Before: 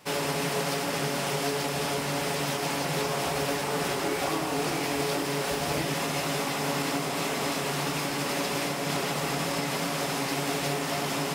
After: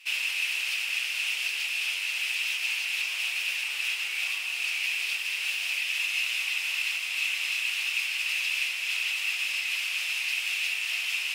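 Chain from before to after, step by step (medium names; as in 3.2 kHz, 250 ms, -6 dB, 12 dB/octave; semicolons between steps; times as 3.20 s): Chebyshev shaper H 5 -27 dB, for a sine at -17.5 dBFS; resonant high-pass 2.6 kHz, resonance Q 7.8; trim -5 dB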